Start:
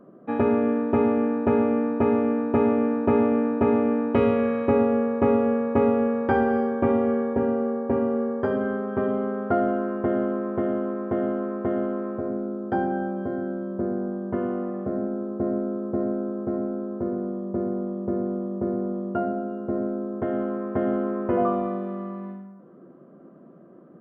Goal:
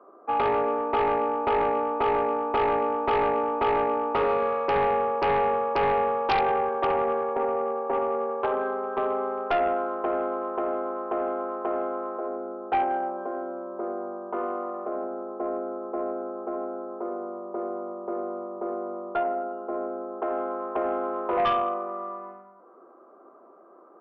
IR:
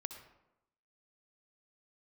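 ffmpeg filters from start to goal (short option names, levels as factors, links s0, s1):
-filter_complex "[0:a]highpass=f=420:w=0.5412,highpass=f=420:w=1.3066,equalizer=f=540:t=q:w=4:g=-5,equalizer=f=840:t=q:w=4:g=7,equalizer=f=1200:t=q:w=4:g=7,equalizer=f=1800:t=q:w=4:g=-9,lowpass=f=2200:w=0.5412,lowpass=f=2200:w=1.3066[s0];[1:a]atrim=start_sample=2205,atrim=end_sample=4410[s1];[s0][s1]afir=irnorm=-1:irlink=0,aeval=exprs='0.266*(cos(1*acos(clip(val(0)/0.266,-1,1)))-cos(1*PI/2))+0.0944*(cos(3*acos(clip(val(0)/0.266,-1,1)))-cos(3*PI/2))+0.106*(cos(5*acos(clip(val(0)/0.266,-1,1)))-cos(5*PI/2))':c=same"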